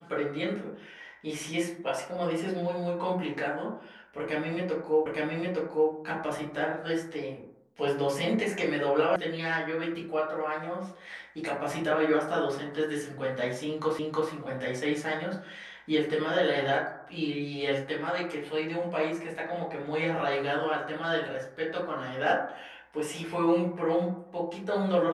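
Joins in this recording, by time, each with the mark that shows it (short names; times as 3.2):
5.06 repeat of the last 0.86 s
9.16 sound cut off
13.99 repeat of the last 0.32 s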